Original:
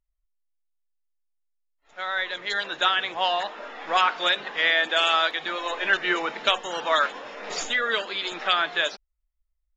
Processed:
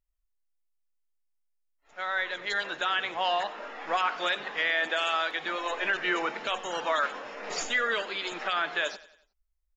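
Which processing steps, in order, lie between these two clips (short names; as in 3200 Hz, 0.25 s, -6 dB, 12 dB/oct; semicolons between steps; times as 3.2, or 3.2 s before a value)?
bell 3600 Hz -5.5 dB 0.31 oct; limiter -15 dBFS, peak gain reduction 9.5 dB; on a send: feedback echo 92 ms, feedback 46%, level -18 dB; on the sum: gain -2 dB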